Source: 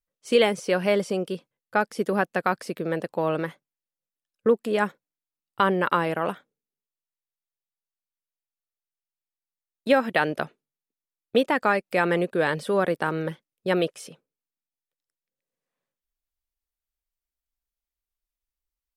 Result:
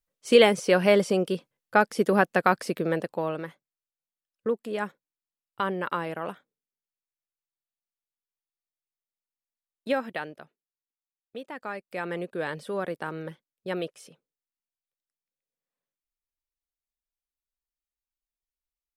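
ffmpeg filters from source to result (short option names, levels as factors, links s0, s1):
-af "volume=4.47,afade=t=out:st=2.74:d=0.63:silence=0.334965,afade=t=out:st=9.96:d=0.43:silence=0.266073,afade=t=in:st=11.39:d=0.97:silence=0.298538"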